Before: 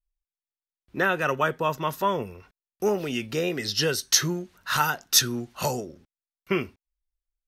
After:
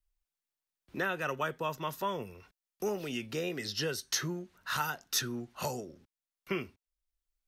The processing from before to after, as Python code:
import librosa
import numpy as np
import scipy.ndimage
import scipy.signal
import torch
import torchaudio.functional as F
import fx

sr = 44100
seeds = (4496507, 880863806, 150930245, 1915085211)

y = fx.band_squash(x, sr, depth_pct=40)
y = F.gain(torch.from_numpy(y), -9.0).numpy()